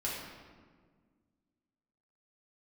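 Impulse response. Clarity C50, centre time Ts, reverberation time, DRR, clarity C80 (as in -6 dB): 0.0 dB, 80 ms, 1.6 s, -6.0 dB, 2.5 dB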